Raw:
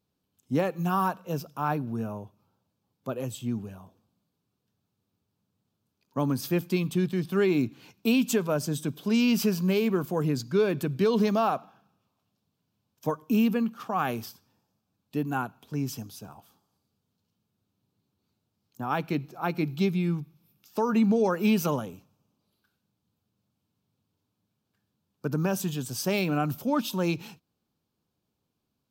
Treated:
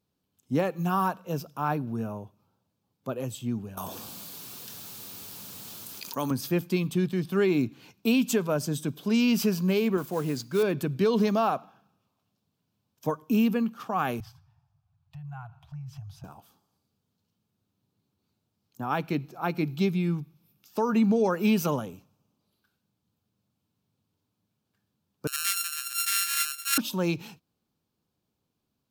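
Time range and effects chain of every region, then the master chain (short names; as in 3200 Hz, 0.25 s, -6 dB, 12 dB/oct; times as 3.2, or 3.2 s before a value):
3.77–6.31 tilt +3.5 dB/oct + fast leveller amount 70%
9.97–10.63 low shelf 210 Hz -7 dB + modulation noise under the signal 21 dB
14.2–16.24 RIAA curve playback + compressor, threshold -35 dBFS + Chebyshev band-stop 150–690 Hz, order 4
25.27–26.78 sample sorter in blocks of 32 samples + steep high-pass 1400 Hz 48 dB/oct + bell 12000 Hz +12.5 dB 1.9 oct
whole clip: dry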